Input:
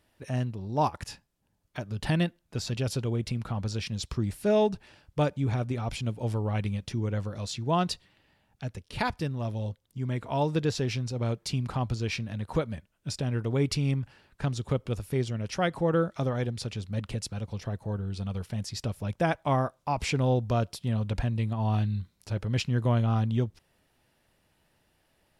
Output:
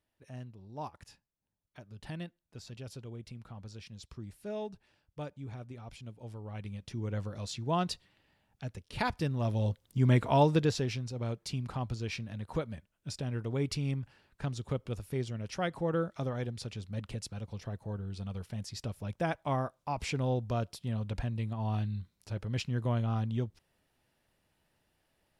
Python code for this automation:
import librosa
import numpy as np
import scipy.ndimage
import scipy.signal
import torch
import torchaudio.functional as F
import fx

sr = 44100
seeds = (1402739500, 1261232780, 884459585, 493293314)

y = fx.gain(x, sr, db=fx.line((6.38, -15.0), (7.17, -4.5), (8.86, -4.5), (10.13, 7.0), (11.02, -6.0)))